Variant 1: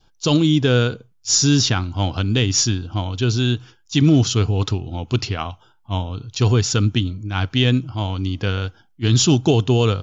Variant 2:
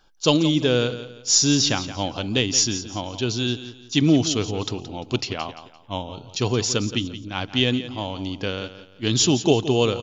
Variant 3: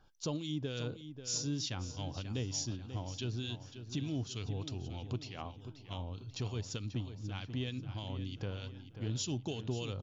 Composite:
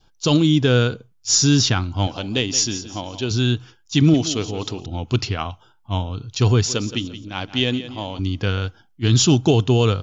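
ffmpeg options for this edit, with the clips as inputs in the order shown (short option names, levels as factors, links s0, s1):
-filter_complex "[1:a]asplit=3[s0][s1][s2];[0:a]asplit=4[s3][s4][s5][s6];[s3]atrim=end=2.072[s7];[s0]atrim=start=2.068:end=3.312[s8];[s4]atrim=start=3.308:end=4.142[s9];[s1]atrim=start=4.138:end=4.862[s10];[s5]atrim=start=4.858:end=6.662[s11];[s2]atrim=start=6.658:end=8.192[s12];[s6]atrim=start=8.188[s13];[s7][s8]acrossfade=d=0.004:c1=hsin:c2=hsin[s14];[s14][s9]acrossfade=d=0.004:c1=hsin:c2=hsin[s15];[s15][s10]acrossfade=d=0.004:c1=hsin:c2=hsin[s16];[s16][s11]acrossfade=d=0.004:c1=hsin:c2=hsin[s17];[s17][s12]acrossfade=d=0.004:c1=hsin:c2=hsin[s18];[s18][s13]acrossfade=d=0.004:c1=hsin:c2=hsin"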